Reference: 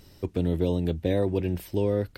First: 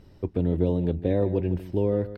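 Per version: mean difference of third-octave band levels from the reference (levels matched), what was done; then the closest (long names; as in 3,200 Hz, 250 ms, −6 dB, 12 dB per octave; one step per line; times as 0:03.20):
5.0 dB: low-pass filter 1,100 Hz 6 dB per octave
on a send: single-tap delay 153 ms −14 dB
on the sum: level +1.5 dB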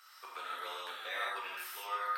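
20.0 dB: four-pole ladder high-pass 1,200 Hz, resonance 80%
reverb whose tail is shaped and stops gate 200 ms flat, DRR −6 dB
level +6.5 dB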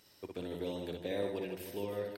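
9.0 dB: high-pass filter 790 Hz 6 dB per octave
reverse bouncing-ball delay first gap 60 ms, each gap 1.6×, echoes 5
level −6 dB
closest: first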